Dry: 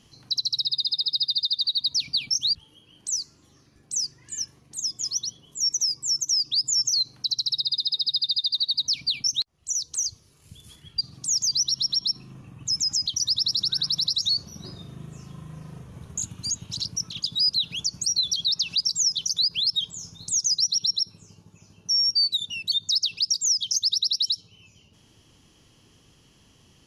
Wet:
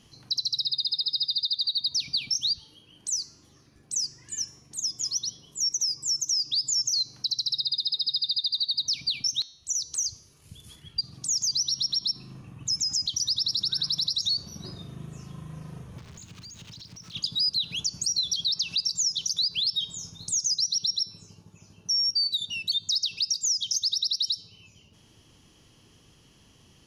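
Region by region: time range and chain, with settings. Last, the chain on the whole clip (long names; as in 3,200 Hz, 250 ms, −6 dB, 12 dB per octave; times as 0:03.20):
0:15.98–0:17.14: spike at every zero crossing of −25.5 dBFS + high-frequency loss of the air 170 metres + downward compressor 10 to 1, threshold −41 dBFS
whole clip: notch filter 7,500 Hz, Q 21; hum removal 267.2 Hz, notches 29; downward compressor 2 to 1, threshold −25 dBFS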